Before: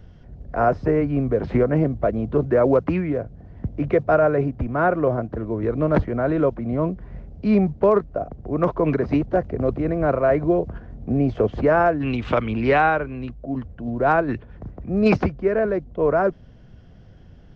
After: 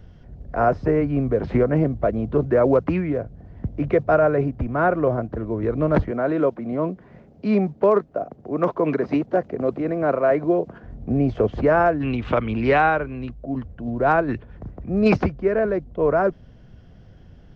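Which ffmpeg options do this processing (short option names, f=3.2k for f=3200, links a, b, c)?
-filter_complex "[0:a]asettb=1/sr,asplit=3[a][b][c];[a]atrim=end=6.114[d];[b]atrim=start=6.11:end=10.84,asetpts=PTS-STARTPTS,afade=t=in:d=0.004:c=qsin,afade=t=out:st=4.726:d=0.004:c=qsin,highpass=190[e];[c]atrim=start=10.836[f];[d][e]acrossfade=d=0.004:c1=hsin:c2=qsin[g];[g][f]acrossfade=d=0.004:c1=qsin:c2=hsin,asettb=1/sr,asplit=3[h][i][j];[h]atrim=end=12.064[k];[i]atrim=start=12.06:end=12.49,asetpts=PTS-STARTPTS,afade=t=in:d=0.004:c=qsin,afade=t=out:st=0.426:d=0.004:c=qsin,highshelf=f=4.1k:g=-8[l];[j]atrim=start=12.486[m];[k][l]acrossfade=d=0.004:c1=hsin:c2=qsin[n];[n][m]acrossfade=d=0.004:c1=qsin:c2=hsin"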